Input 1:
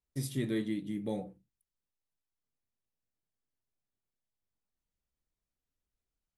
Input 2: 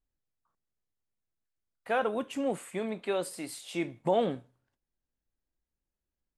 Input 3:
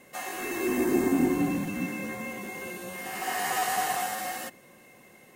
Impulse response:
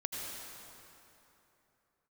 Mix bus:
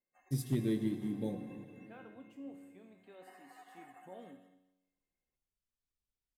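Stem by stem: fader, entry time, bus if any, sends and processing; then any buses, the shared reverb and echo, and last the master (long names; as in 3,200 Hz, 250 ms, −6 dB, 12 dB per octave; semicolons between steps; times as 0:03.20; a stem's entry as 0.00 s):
+1.5 dB, 0.15 s, send −8 dB, no echo send, parametric band 1,400 Hz −12 dB 2.9 octaves; hard clipping −26.5 dBFS, distortion −30 dB; expander for the loud parts 1.5 to 1, over −49 dBFS
−15.0 dB, 0.00 s, no send, echo send −20.5 dB, parametric band 260 Hz +11.5 dB 0.32 octaves; tuned comb filter 93 Hz, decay 0.96 s, harmonics all, mix 80%
−18.5 dB, 0.00 s, no send, echo send −15 dB, brickwall limiter −22 dBFS, peak gain reduction 8.5 dB; spectral peaks only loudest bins 64; expander for the loud parts 2.5 to 1, over −43 dBFS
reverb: on, RT60 3.1 s, pre-delay 72 ms
echo: single-tap delay 226 ms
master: linearly interpolated sample-rate reduction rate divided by 2×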